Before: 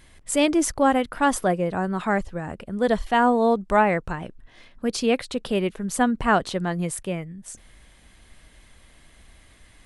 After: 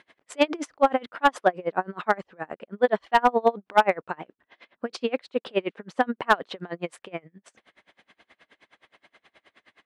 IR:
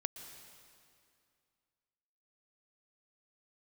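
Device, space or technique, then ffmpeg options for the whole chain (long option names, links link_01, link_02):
helicopter radio: -af "highpass=380,lowpass=2900,aeval=exprs='val(0)*pow(10,-31*(0.5-0.5*cos(2*PI*9.5*n/s))/20)':channel_layout=same,asoftclip=type=hard:threshold=-14dB,volume=6.5dB"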